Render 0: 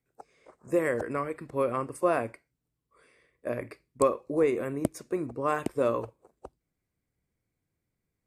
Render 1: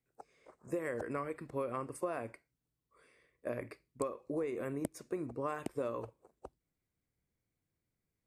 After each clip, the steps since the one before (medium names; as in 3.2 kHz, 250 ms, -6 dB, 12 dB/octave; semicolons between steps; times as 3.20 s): compression 12:1, threshold -28 dBFS, peak gain reduction 11 dB; trim -4.5 dB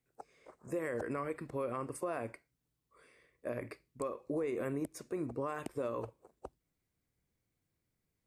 peak limiter -30 dBFS, peak gain reduction 10.5 dB; trim +2.5 dB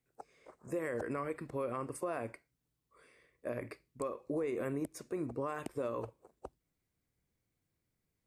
no audible change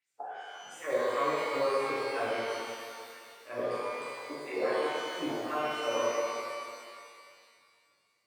wow and flutter 17 cents; LFO band-pass sine 3 Hz 460–7300 Hz; pitch-shifted reverb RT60 2.2 s, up +12 st, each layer -8 dB, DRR -10.5 dB; trim +5 dB